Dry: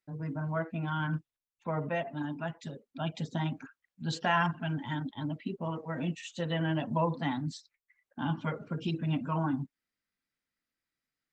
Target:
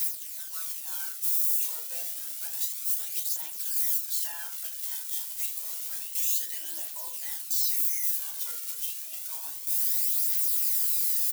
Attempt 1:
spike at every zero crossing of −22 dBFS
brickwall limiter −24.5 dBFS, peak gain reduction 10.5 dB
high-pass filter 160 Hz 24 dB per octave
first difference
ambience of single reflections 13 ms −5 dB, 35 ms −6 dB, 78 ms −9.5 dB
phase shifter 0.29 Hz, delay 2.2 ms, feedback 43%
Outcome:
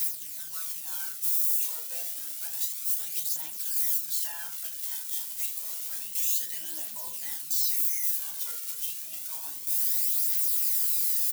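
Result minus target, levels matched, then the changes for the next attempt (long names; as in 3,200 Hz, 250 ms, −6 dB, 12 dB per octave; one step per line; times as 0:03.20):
125 Hz band +12.5 dB
change: high-pass filter 330 Hz 24 dB per octave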